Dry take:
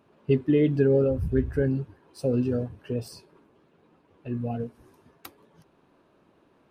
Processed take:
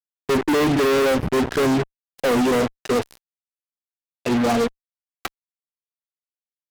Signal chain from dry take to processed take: three-band isolator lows -22 dB, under 210 Hz, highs -16 dB, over 3800 Hz; fuzz box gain 46 dB, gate -44 dBFS; gain -3.5 dB

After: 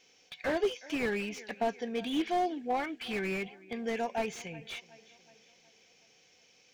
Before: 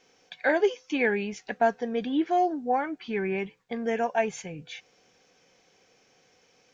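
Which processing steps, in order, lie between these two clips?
resonant high shelf 1900 Hz +6.5 dB, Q 1.5; darkening echo 0.37 s, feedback 53%, low-pass 5000 Hz, level -21.5 dB; 2.05–3.38 dynamic EQ 3400 Hz, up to +7 dB, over -46 dBFS, Q 0.72; slew limiter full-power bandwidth 67 Hz; gain -5.5 dB

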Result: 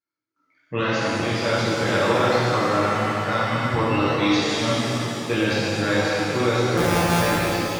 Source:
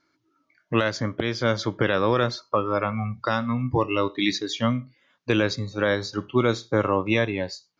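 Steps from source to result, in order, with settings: 6.77–7.21 sample sorter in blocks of 256 samples; gate with hold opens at -59 dBFS; shimmer reverb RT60 3.1 s, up +7 st, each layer -8 dB, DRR -9.5 dB; gain -6.5 dB

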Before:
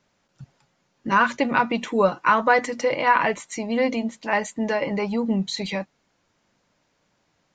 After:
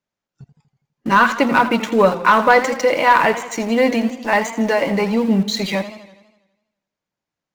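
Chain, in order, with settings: spectral noise reduction 14 dB; sample leveller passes 1; in parallel at -4 dB: sample gate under -29 dBFS; on the sum: warbling echo 82 ms, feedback 59%, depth 123 cents, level -13 dB; gain -1.5 dB

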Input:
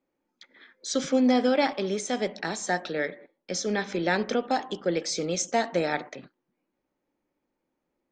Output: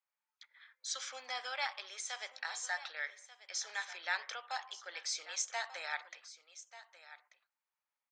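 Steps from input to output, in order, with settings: HPF 950 Hz 24 dB/oct; on a send: echo 1.188 s -15.5 dB; on the sum: gain -6.5 dB

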